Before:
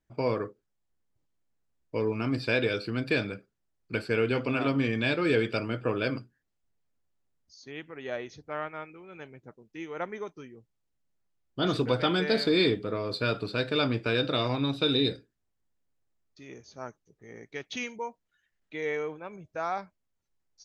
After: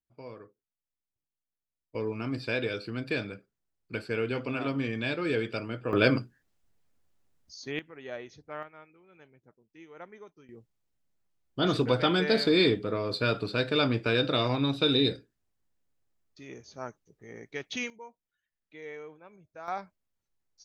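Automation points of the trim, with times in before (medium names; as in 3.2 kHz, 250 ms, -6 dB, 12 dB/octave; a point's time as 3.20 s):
-16.5 dB
from 1.95 s -4 dB
from 5.93 s +7 dB
from 7.79 s -4.5 dB
from 8.63 s -11.5 dB
from 10.49 s +1 dB
from 17.90 s -11 dB
from 19.68 s -2 dB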